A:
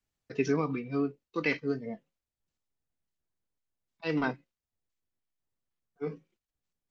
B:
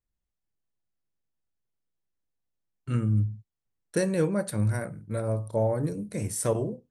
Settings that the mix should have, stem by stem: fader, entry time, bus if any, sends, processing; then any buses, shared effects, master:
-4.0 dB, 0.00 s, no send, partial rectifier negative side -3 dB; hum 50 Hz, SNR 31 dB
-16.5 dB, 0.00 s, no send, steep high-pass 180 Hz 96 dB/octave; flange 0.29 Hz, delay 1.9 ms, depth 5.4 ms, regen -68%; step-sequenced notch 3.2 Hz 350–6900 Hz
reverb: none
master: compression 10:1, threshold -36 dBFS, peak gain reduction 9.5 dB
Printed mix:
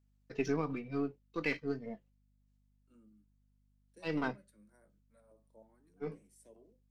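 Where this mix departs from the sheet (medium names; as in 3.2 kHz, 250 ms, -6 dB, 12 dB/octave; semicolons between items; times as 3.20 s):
stem B -16.5 dB -> -28.0 dB; master: missing compression 10:1, threshold -36 dBFS, peak gain reduction 9.5 dB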